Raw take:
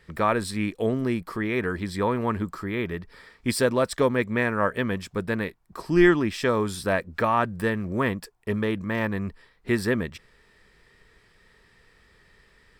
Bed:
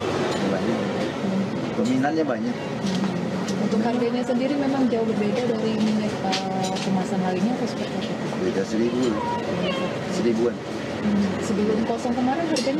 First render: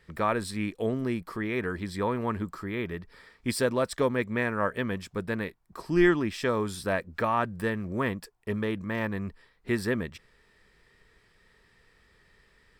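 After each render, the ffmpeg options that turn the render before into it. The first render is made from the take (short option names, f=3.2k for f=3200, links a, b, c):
-af "volume=-4dB"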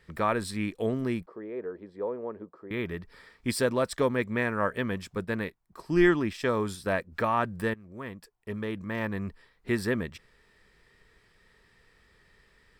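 -filter_complex "[0:a]asettb=1/sr,asplit=3[a][b][c];[a]atrim=end=1.264[d];[b]atrim=start=1.26:end=2.71,asetpts=PTS-STARTPTS,afade=t=in:d=0.004:c=qsin,afade=t=out:st=1.446:d=0.004:c=qsin,bandpass=f=490:t=q:w=2.4[e];[c]atrim=start=2.706[f];[d][e]acrossfade=d=0.004:c1=hsin:c2=qsin[g];[g][f]acrossfade=d=0.004:c1=qsin:c2=hsin,asettb=1/sr,asplit=3[h][i][j];[h]atrim=end=5.154[k];[i]atrim=start=5.15:end=7.12,asetpts=PTS-STARTPTS,afade=t=in:d=0.004:c=qsin,afade=t=out:st=1.966:d=0.004:c=qsin,agate=range=-6dB:threshold=-39dB:ratio=16:release=100:detection=peak[l];[j]atrim=start=7.116[m];[k][l]acrossfade=d=0.004:c1=hsin:c2=qsin[n];[n][m]acrossfade=d=0.004:c1=qsin:c2=hsin,asplit=2[o][p];[o]atrim=end=7.74,asetpts=PTS-STARTPTS,afade=t=out:st=7.736:d=0.004:c=hsin:silence=0.112202[q];[p]atrim=start=7.74,asetpts=PTS-STARTPTS,afade=t=in:d=1.49:silence=0.112202[r];[q][r]concat=n=2:v=0:a=1"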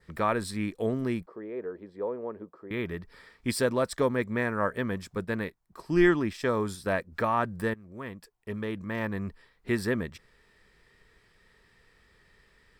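-af "adynamicequalizer=threshold=0.00251:dfrequency=2800:dqfactor=2.1:tfrequency=2800:tqfactor=2.1:attack=5:release=100:ratio=0.375:range=3:mode=cutabove:tftype=bell"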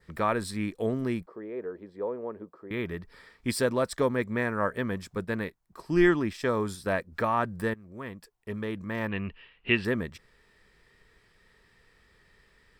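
-filter_complex "[0:a]asettb=1/sr,asplit=3[a][b][c];[a]atrim=end=9.084[d];[b]atrim=start=9.08:end=9.85,asetpts=PTS-STARTPTS,afade=t=in:d=0.004:c=qsin,afade=t=out:st=0.766:d=0.004:c=qsin,lowpass=f=2.8k:t=q:w=16[e];[c]atrim=start=9.846[f];[d][e]acrossfade=d=0.004:c1=hsin:c2=qsin[g];[g][f]acrossfade=d=0.004:c1=qsin:c2=hsin"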